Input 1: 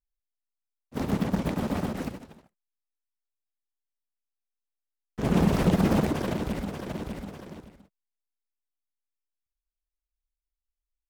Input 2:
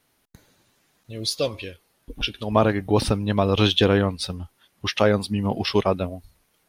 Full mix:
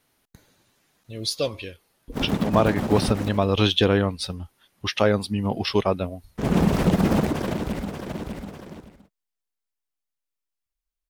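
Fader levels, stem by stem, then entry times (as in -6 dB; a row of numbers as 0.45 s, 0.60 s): +2.5 dB, -1.0 dB; 1.20 s, 0.00 s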